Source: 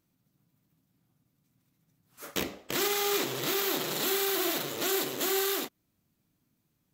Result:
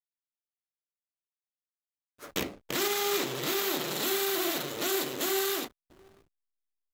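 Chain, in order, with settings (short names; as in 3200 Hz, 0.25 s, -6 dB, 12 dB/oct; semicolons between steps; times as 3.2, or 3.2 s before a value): echo 0.689 s -23.5 dB; backlash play -40.5 dBFS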